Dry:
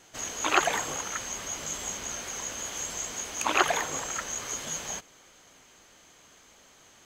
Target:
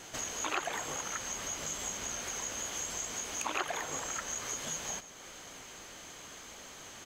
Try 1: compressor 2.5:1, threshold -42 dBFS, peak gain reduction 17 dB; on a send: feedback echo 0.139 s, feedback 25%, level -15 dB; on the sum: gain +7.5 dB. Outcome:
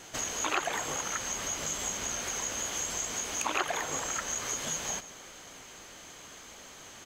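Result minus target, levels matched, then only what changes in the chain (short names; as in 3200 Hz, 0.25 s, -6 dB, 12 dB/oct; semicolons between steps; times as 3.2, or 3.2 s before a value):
compressor: peak gain reduction -4 dB
change: compressor 2.5:1, threshold -48.5 dBFS, peak gain reduction 20.5 dB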